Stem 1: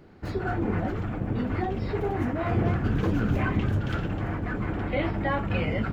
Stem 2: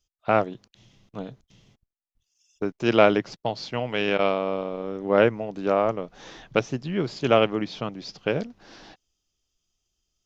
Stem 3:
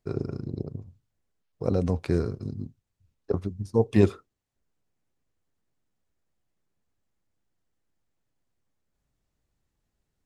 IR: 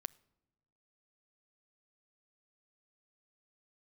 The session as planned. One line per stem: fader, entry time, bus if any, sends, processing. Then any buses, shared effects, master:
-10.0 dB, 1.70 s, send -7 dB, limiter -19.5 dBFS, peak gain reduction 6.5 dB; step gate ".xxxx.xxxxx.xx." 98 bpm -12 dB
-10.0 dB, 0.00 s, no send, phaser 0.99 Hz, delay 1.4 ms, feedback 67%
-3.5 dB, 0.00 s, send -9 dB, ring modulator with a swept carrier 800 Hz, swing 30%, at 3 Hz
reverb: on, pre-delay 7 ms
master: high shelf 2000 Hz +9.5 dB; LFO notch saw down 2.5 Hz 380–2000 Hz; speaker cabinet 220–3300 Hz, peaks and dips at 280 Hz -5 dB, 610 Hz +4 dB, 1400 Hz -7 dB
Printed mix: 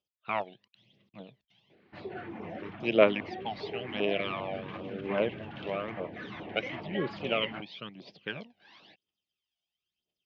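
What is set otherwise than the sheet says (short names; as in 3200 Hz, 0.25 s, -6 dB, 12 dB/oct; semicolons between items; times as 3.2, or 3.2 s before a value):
stem 1: missing step gate ".xxxx.xxxxx.xx." 98 bpm -12 dB; stem 3: muted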